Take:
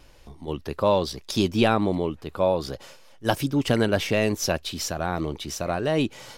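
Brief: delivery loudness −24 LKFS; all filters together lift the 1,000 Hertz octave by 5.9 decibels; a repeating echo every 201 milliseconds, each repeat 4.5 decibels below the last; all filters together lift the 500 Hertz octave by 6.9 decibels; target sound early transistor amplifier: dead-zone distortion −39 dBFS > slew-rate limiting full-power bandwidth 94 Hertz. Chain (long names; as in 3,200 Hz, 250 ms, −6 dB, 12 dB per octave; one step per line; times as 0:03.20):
parametric band 500 Hz +7 dB
parametric band 1,000 Hz +5 dB
repeating echo 201 ms, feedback 60%, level −4.5 dB
dead-zone distortion −39 dBFS
slew-rate limiting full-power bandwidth 94 Hz
level −2.5 dB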